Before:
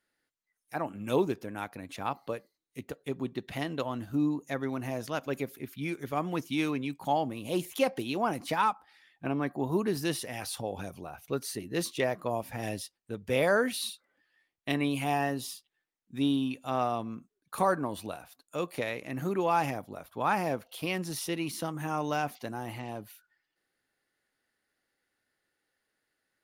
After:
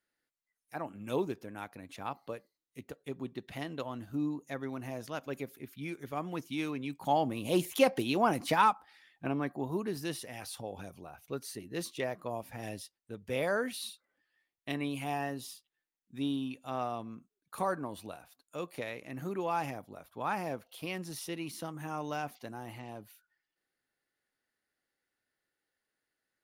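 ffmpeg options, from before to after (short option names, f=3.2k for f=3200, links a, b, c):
-af "volume=2dB,afade=t=in:st=6.76:d=0.64:silence=0.421697,afade=t=out:st=8.59:d=1.19:silence=0.398107"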